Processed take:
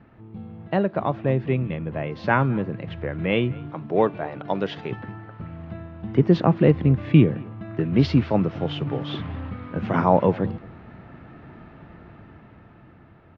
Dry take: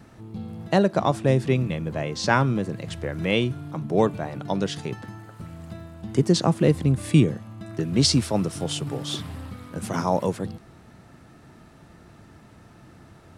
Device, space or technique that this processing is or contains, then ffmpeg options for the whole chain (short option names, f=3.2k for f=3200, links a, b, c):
action camera in a waterproof case: -filter_complex "[0:a]asplit=3[a][b][c];[a]afade=t=out:st=3.69:d=0.02[d];[b]bass=f=250:g=-8,treble=f=4k:g=7,afade=t=in:st=3.69:d=0.02,afade=t=out:st=4.9:d=0.02[e];[c]afade=t=in:st=4.9:d=0.02[f];[d][e][f]amix=inputs=3:normalize=0,lowpass=f=2.8k:w=0.5412,lowpass=f=2.8k:w=1.3066,asplit=2[g][h];[h]adelay=215.7,volume=-23dB,highshelf=f=4k:g=-4.85[i];[g][i]amix=inputs=2:normalize=0,dynaudnorm=f=310:g=11:m=15.5dB,volume=-3dB" -ar 16000 -c:a aac -b:a 48k